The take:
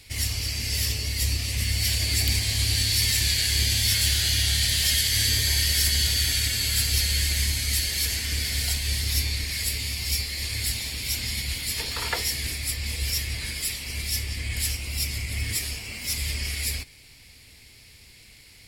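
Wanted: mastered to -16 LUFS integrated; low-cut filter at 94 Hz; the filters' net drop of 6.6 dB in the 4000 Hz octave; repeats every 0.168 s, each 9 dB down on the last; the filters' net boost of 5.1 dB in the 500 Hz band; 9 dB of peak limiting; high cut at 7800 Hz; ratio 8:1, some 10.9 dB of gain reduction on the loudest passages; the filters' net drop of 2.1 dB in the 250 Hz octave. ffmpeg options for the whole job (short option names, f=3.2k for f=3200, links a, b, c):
-af "highpass=94,lowpass=7.8k,equalizer=f=250:t=o:g=-4.5,equalizer=f=500:t=o:g=7.5,equalizer=f=4k:t=o:g=-8,acompressor=threshold=-35dB:ratio=8,alimiter=level_in=7dB:limit=-24dB:level=0:latency=1,volume=-7dB,aecho=1:1:168|336|504|672:0.355|0.124|0.0435|0.0152,volume=22.5dB"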